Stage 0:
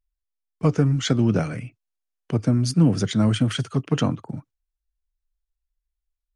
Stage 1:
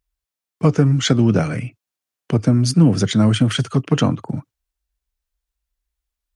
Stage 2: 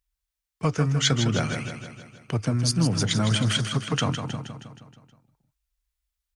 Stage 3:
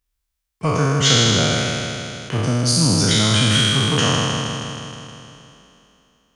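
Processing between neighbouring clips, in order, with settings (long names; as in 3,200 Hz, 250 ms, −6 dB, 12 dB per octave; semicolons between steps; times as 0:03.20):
high-pass filter 46 Hz; in parallel at −1.5 dB: downward compressor, threshold −25 dBFS, peak gain reduction 12.5 dB; on the sum: level +2.5 dB
parametric band 270 Hz −11.5 dB 2.7 octaves; repeating echo 158 ms, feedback 57%, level −8 dB; level −1 dB
peak hold with a decay on every bin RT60 2.88 s; level +2 dB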